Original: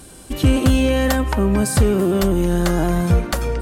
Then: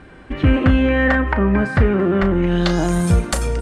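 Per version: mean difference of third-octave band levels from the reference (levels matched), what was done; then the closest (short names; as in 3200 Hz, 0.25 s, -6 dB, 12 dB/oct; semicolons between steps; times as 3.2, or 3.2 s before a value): 6.0 dB: low-pass sweep 1900 Hz -> 9100 Hz, 2.4–2.96; doubler 35 ms -12 dB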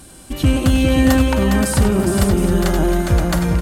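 3.5 dB: bell 440 Hz -6 dB 0.32 oct; tapped delay 96/260/409/523/716 ms -12/-17/-5.5/-6.5/-11.5 dB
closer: second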